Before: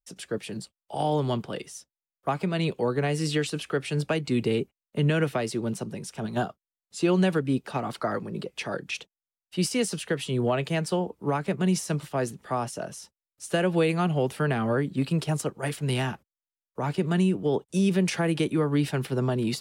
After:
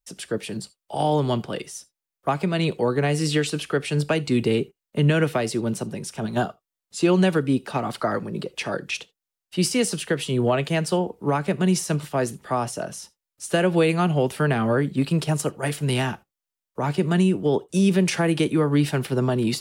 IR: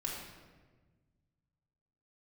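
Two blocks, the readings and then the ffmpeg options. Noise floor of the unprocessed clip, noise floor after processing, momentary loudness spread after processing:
below −85 dBFS, below −85 dBFS, 11 LU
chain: -filter_complex "[0:a]asplit=2[link_01][link_02];[1:a]atrim=start_sample=2205,atrim=end_sample=3969,highshelf=frequency=4000:gain=11.5[link_03];[link_02][link_03]afir=irnorm=-1:irlink=0,volume=-19.5dB[link_04];[link_01][link_04]amix=inputs=2:normalize=0,volume=3.5dB"

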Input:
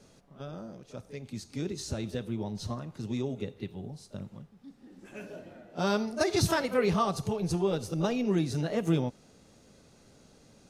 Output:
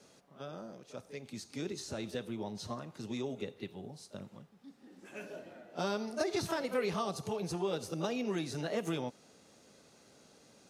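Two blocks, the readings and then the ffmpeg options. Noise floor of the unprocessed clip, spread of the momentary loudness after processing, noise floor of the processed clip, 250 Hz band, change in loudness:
−60 dBFS, 15 LU, −63 dBFS, −7.5 dB, −7.5 dB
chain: -filter_complex "[0:a]acrossover=split=640|2500[link_01][link_02][link_03];[link_01]acompressor=threshold=-29dB:ratio=4[link_04];[link_02]acompressor=threshold=-39dB:ratio=4[link_05];[link_03]acompressor=threshold=-44dB:ratio=4[link_06];[link_04][link_05][link_06]amix=inputs=3:normalize=0,highpass=frequency=340:poles=1"

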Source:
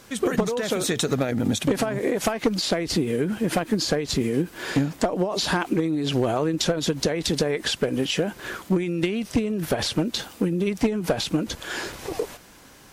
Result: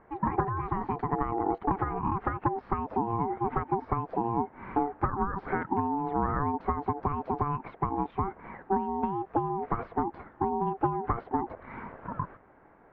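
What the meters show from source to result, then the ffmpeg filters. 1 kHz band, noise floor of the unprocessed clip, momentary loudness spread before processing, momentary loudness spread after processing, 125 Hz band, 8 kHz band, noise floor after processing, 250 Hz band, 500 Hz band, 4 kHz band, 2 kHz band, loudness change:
+5.5 dB, −49 dBFS, 4 LU, 5 LU, −6.0 dB, below −40 dB, −57 dBFS, −9.0 dB, −9.5 dB, below −35 dB, −11.5 dB, −6.5 dB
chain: -af "lowpass=frequency=1200:width=0.5412,lowpass=frequency=1200:width=1.3066,aeval=exprs='val(0)*sin(2*PI*580*n/s)':channel_layout=same,volume=-2.5dB"

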